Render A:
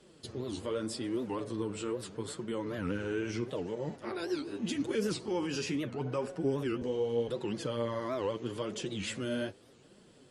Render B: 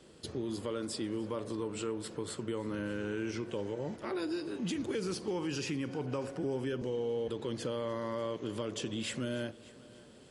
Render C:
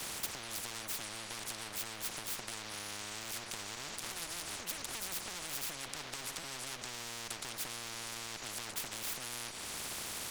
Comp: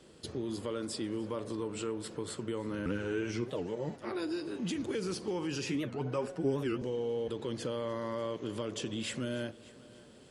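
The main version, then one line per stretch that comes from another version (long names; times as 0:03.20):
B
0:02.86–0:04.15: punch in from A
0:05.69–0:06.78: punch in from A
not used: C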